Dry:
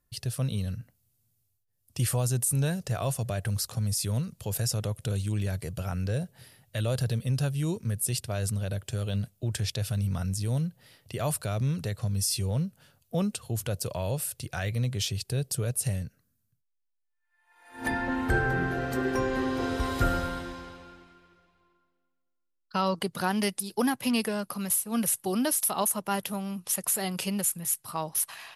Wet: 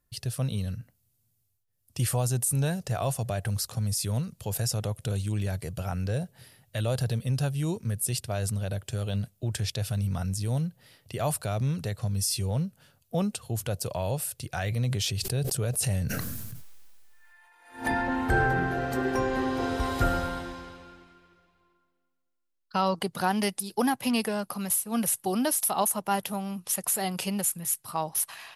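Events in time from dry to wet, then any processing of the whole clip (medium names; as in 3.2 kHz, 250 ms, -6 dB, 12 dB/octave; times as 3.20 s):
14.53–18.60 s: decay stretcher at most 21 dB/s
whole clip: dynamic bell 780 Hz, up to +5 dB, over -49 dBFS, Q 2.8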